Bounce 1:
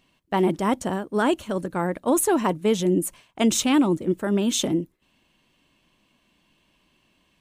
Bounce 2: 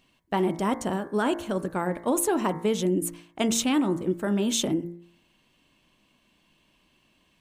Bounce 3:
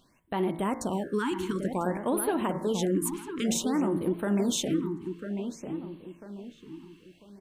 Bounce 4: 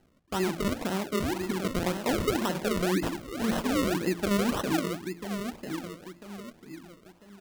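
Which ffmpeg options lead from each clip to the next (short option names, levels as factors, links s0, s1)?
-af "bandreject=f=57.43:t=h:w=4,bandreject=f=114.86:t=h:w=4,bandreject=f=172.29:t=h:w=4,bandreject=f=229.72:t=h:w=4,bandreject=f=287.15:t=h:w=4,bandreject=f=344.58:t=h:w=4,bandreject=f=402.01:t=h:w=4,bandreject=f=459.44:t=h:w=4,bandreject=f=516.87:t=h:w=4,bandreject=f=574.3:t=h:w=4,bandreject=f=631.73:t=h:w=4,bandreject=f=689.16:t=h:w=4,bandreject=f=746.59:t=h:w=4,bandreject=f=804.02:t=h:w=4,bandreject=f=861.45:t=h:w=4,bandreject=f=918.88:t=h:w=4,bandreject=f=976.31:t=h:w=4,bandreject=f=1033.74:t=h:w=4,bandreject=f=1091.17:t=h:w=4,bandreject=f=1148.6:t=h:w=4,bandreject=f=1206.03:t=h:w=4,bandreject=f=1263.46:t=h:w=4,bandreject=f=1320.89:t=h:w=4,bandreject=f=1378.32:t=h:w=4,bandreject=f=1435.75:t=h:w=4,bandreject=f=1493.18:t=h:w=4,bandreject=f=1550.61:t=h:w=4,bandreject=f=1608.04:t=h:w=4,bandreject=f=1665.47:t=h:w=4,bandreject=f=1722.9:t=h:w=4,bandreject=f=1780.33:t=h:w=4,bandreject=f=1837.76:t=h:w=4,bandreject=f=1895.19:t=h:w=4,bandreject=f=1952.62:t=h:w=4,bandreject=f=2010.05:t=h:w=4,bandreject=f=2067.48:t=h:w=4,bandreject=f=2124.91:t=h:w=4,bandreject=f=2182.34:t=h:w=4,bandreject=f=2239.77:t=h:w=4,acompressor=threshold=0.0708:ratio=2"
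-filter_complex "[0:a]alimiter=limit=0.0841:level=0:latency=1:release=238,asplit=2[s0][s1];[s1]adelay=996,lowpass=f=1900:p=1,volume=0.447,asplit=2[s2][s3];[s3]adelay=996,lowpass=f=1900:p=1,volume=0.37,asplit=2[s4][s5];[s5]adelay=996,lowpass=f=1900:p=1,volume=0.37,asplit=2[s6][s7];[s7]adelay=996,lowpass=f=1900:p=1,volume=0.37[s8];[s0][s2][s4][s6][s8]amix=inputs=5:normalize=0,afftfilt=real='re*(1-between(b*sr/1024,550*pow(6700/550,0.5+0.5*sin(2*PI*0.55*pts/sr))/1.41,550*pow(6700/550,0.5+0.5*sin(2*PI*0.55*pts/sr))*1.41))':imag='im*(1-between(b*sr/1024,550*pow(6700/550,0.5+0.5*sin(2*PI*0.55*pts/sr))/1.41,550*pow(6700/550,0.5+0.5*sin(2*PI*0.55*pts/sr))*1.41))':win_size=1024:overlap=0.75,volume=1.33"
-af "acrusher=samples=37:mix=1:aa=0.000001:lfo=1:lforange=37:lforate=1.9"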